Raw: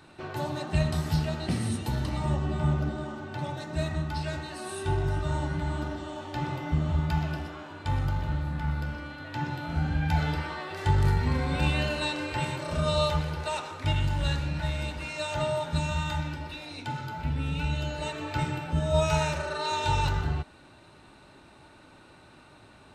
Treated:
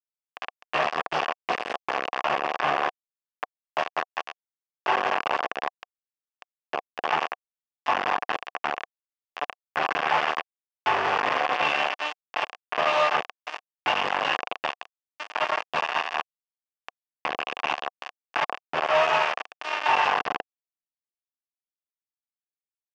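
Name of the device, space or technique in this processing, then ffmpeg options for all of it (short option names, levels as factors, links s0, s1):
hand-held game console: -filter_complex "[0:a]asplit=3[s0][s1][s2];[s0]afade=t=out:st=5.68:d=0.02[s3];[s1]highpass=f=190:p=1,afade=t=in:st=5.68:d=0.02,afade=t=out:st=7.02:d=0.02[s4];[s2]afade=t=in:st=7.02:d=0.02[s5];[s3][s4][s5]amix=inputs=3:normalize=0,acrusher=bits=3:mix=0:aa=0.000001,highpass=480,equalizer=f=490:t=q:w=4:g=3,equalizer=f=740:t=q:w=4:g=10,equalizer=f=1100:t=q:w=4:g=9,equalizer=f=1700:t=q:w=4:g=5,equalizer=f=2700:t=q:w=4:g=7,equalizer=f=4000:t=q:w=4:g=-10,lowpass=f=4400:w=0.5412,lowpass=f=4400:w=1.3066"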